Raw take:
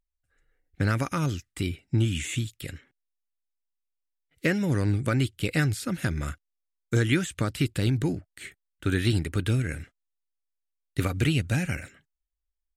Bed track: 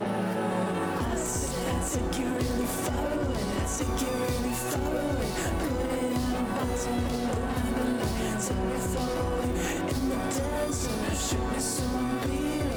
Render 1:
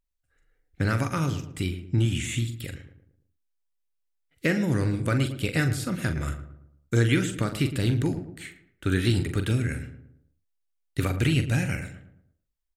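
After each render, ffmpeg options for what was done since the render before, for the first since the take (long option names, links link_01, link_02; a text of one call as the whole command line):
ffmpeg -i in.wav -filter_complex "[0:a]asplit=2[link_01][link_02];[link_02]adelay=43,volume=-9dB[link_03];[link_01][link_03]amix=inputs=2:normalize=0,asplit=2[link_04][link_05];[link_05]adelay=112,lowpass=frequency=1200:poles=1,volume=-10dB,asplit=2[link_06][link_07];[link_07]adelay=112,lowpass=frequency=1200:poles=1,volume=0.46,asplit=2[link_08][link_09];[link_09]adelay=112,lowpass=frequency=1200:poles=1,volume=0.46,asplit=2[link_10][link_11];[link_11]adelay=112,lowpass=frequency=1200:poles=1,volume=0.46,asplit=2[link_12][link_13];[link_13]adelay=112,lowpass=frequency=1200:poles=1,volume=0.46[link_14];[link_04][link_06][link_08][link_10][link_12][link_14]amix=inputs=6:normalize=0" out.wav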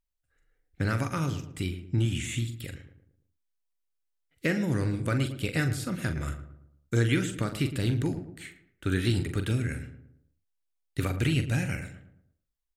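ffmpeg -i in.wav -af "volume=-3dB" out.wav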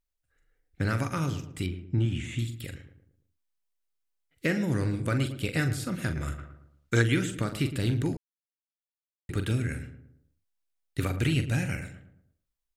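ffmpeg -i in.wav -filter_complex "[0:a]asettb=1/sr,asplit=3[link_01][link_02][link_03];[link_01]atrim=end=1.664[link_04];[link_02]atrim=start=1.66:end=2.39,asetpts=PTS-STARTPTS,afade=type=in:duration=0.004:curve=qsin,afade=type=out:start_time=0.726:duration=0.004:curve=qsin,aemphasis=mode=reproduction:type=75kf[link_05];[link_03]atrim=start=2.386[link_06];[link_04][link_05]acrossfade=duration=0.004:curve1=hsin:curve2=qsin[link_07];[link_07][link_06]acrossfade=duration=0.004:curve1=qsin:curve2=hsin,asettb=1/sr,asplit=3[link_08][link_09][link_10];[link_08]atrim=end=6.384[link_11];[link_09]atrim=start=6.38:end=7.02,asetpts=PTS-STARTPTS,afade=type=in:duration=0.004:curve=qsin,afade=type=out:start_time=0.636:duration=0.004:curve=qsin,equalizer=frequency=2200:width=0.35:gain=9[link_12];[link_10]atrim=start=7.016[link_13];[link_11][link_12]acrossfade=duration=0.004:curve1=hsin:curve2=qsin[link_14];[link_14][link_13]acrossfade=duration=0.004:curve1=qsin:curve2=hsin,asplit=3[link_15][link_16][link_17];[link_15]atrim=end=8.17,asetpts=PTS-STARTPTS,afade=type=out:start_time=8.166:duration=0.004:curve=hsin[link_18];[link_16]atrim=start=8.17:end=9.29,asetpts=PTS-STARTPTS,volume=0[link_19];[link_17]atrim=start=9.29,asetpts=PTS-STARTPTS,afade=type=in:duration=0.004:curve=hsin[link_20];[link_18][link_19][link_20]concat=n=3:v=0:a=1" out.wav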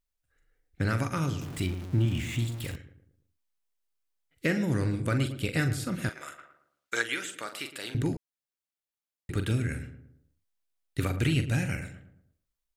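ffmpeg -i in.wav -filter_complex "[0:a]asettb=1/sr,asplit=3[link_01][link_02][link_03];[link_01]atrim=end=1.414[link_04];[link_02]atrim=start=1.41:end=2.76,asetpts=PTS-STARTPTS,afade=type=in:duration=0.004:curve=qsin,afade=type=out:start_time=1.346:duration=0.004:curve=qsin,aeval=exprs='val(0)+0.5*0.0126*sgn(val(0))':channel_layout=same[link_05];[link_03]atrim=start=2.756[link_06];[link_04][link_05]acrossfade=duration=0.004:curve1=hsin:curve2=qsin[link_07];[link_07][link_06]acrossfade=duration=0.004:curve1=qsin:curve2=hsin,asettb=1/sr,asplit=3[link_08][link_09][link_10];[link_08]atrim=end=6.094[link_11];[link_09]atrim=start=6.09:end=7.95,asetpts=PTS-STARTPTS,afade=type=in:duration=0.004:curve=qsin,afade=type=out:start_time=1.856:duration=0.004:curve=qsin,highpass=670[link_12];[link_10]atrim=start=7.946[link_13];[link_11][link_12]acrossfade=duration=0.004:curve1=hsin:curve2=qsin[link_14];[link_14][link_13]acrossfade=duration=0.004:curve1=qsin:curve2=hsin" out.wav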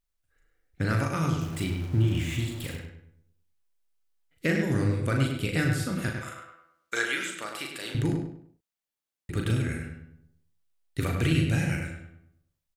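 ffmpeg -i in.wav -filter_complex "[0:a]asplit=2[link_01][link_02];[link_02]adelay=37,volume=-6dB[link_03];[link_01][link_03]amix=inputs=2:normalize=0,asplit=2[link_04][link_05];[link_05]adelay=100,lowpass=frequency=3400:poles=1,volume=-5dB,asplit=2[link_06][link_07];[link_07]adelay=100,lowpass=frequency=3400:poles=1,volume=0.34,asplit=2[link_08][link_09];[link_09]adelay=100,lowpass=frequency=3400:poles=1,volume=0.34,asplit=2[link_10][link_11];[link_11]adelay=100,lowpass=frequency=3400:poles=1,volume=0.34[link_12];[link_06][link_08][link_10][link_12]amix=inputs=4:normalize=0[link_13];[link_04][link_13]amix=inputs=2:normalize=0" out.wav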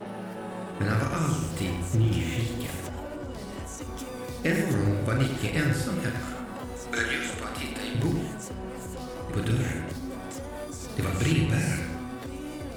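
ffmpeg -i in.wav -i bed.wav -filter_complex "[1:a]volume=-8dB[link_01];[0:a][link_01]amix=inputs=2:normalize=0" out.wav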